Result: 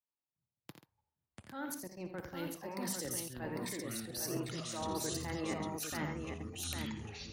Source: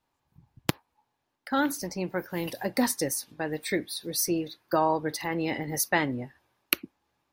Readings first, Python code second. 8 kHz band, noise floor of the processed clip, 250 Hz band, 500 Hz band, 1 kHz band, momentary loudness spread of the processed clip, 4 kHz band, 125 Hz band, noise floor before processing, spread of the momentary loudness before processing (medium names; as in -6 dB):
-8.0 dB, under -85 dBFS, -10.5 dB, -11.5 dB, -13.5 dB, 8 LU, -8.5 dB, -6.0 dB, -79 dBFS, 7 LU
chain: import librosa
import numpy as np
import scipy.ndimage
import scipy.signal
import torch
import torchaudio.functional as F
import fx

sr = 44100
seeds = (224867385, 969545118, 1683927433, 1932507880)

p1 = fx.fade_out_tail(x, sr, length_s=2.18)
p2 = scipy.signal.sosfilt(scipy.signal.butter(2, 98.0, 'highpass', fs=sr, output='sos'), p1)
p3 = fx.spec_box(p2, sr, start_s=2.13, length_s=0.28, low_hz=2700.0, high_hz=6100.0, gain_db=9)
p4 = fx.level_steps(p3, sr, step_db=17)
p5 = fx.transient(p4, sr, attack_db=-5, sustain_db=-1)
p6 = fx.echo_pitch(p5, sr, ms=345, semitones=-7, count=3, db_per_echo=-3.0)
p7 = p6 + fx.echo_multitap(p6, sr, ms=(59, 85, 136, 802), db=(-11.5, -8.5, -14.0, -4.0), dry=0)
p8 = fx.band_widen(p7, sr, depth_pct=40)
y = p8 * librosa.db_to_amplitude(-5.5)